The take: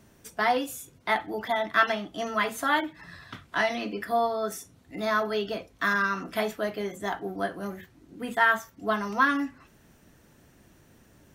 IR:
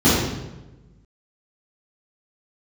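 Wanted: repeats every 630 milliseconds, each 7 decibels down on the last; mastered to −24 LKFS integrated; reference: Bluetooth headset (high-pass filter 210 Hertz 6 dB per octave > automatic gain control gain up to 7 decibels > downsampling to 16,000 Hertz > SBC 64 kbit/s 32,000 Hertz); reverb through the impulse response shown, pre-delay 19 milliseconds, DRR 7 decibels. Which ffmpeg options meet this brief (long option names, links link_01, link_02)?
-filter_complex "[0:a]aecho=1:1:630|1260|1890|2520|3150:0.447|0.201|0.0905|0.0407|0.0183,asplit=2[link_01][link_02];[1:a]atrim=start_sample=2205,adelay=19[link_03];[link_02][link_03]afir=irnorm=-1:irlink=0,volume=-30dB[link_04];[link_01][link_04]amix=inputs=2:normalize=0,highpass=frequency=210:poles=1,dynaudnorm=maxgain=7dB,aresample=16000,aresample=44100,volume=3dB" -ar 32000 -c:a sbc -b:a 64k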